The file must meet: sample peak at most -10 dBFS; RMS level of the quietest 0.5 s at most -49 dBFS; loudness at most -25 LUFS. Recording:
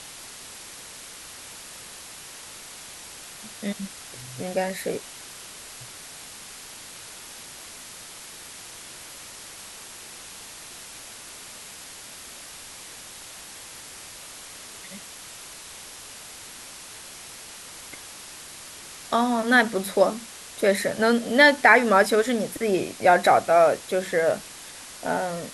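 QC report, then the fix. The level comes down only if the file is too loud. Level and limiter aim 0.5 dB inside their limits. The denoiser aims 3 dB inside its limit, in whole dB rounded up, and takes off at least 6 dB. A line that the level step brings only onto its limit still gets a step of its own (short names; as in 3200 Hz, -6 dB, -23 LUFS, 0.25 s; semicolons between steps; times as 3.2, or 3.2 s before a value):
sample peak -4.5 dBFS: fail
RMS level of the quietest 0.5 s -42 dBFS: fail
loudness -21.5 LUFS: fail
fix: denoiser 6 dB, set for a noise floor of -42 dBFS; gain -4 dB; limiter -10.5 dBFS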